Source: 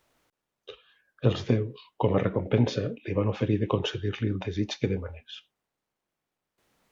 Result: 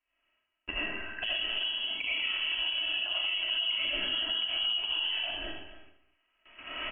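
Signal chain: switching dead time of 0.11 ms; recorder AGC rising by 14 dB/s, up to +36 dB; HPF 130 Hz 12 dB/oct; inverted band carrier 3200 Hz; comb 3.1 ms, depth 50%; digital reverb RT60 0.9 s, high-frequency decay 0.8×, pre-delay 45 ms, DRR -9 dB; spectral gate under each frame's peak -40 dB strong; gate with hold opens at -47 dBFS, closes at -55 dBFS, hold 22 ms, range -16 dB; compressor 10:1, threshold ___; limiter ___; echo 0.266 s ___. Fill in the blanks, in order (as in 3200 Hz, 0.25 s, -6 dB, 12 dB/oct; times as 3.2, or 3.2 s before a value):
-27 dBFS, -23 dBFS, -13 dB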